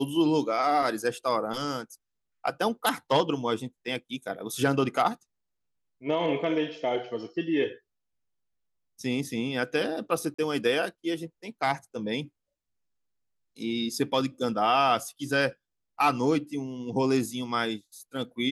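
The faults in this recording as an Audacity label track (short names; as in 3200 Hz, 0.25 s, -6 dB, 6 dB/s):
10.340000	10.380000	gap 45 ms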